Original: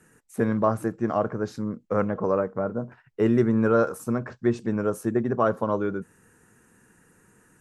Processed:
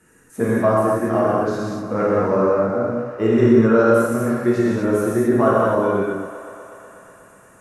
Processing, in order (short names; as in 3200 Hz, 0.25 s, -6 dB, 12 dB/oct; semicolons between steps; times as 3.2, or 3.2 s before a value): bell 140 Hz -2.5 dB 0.73 oct; thinning echo 0.122 s, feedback 84%, high-pass 210 Hz, level -14 dB; non-linear reverb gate 0.28 s flat, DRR -7 dB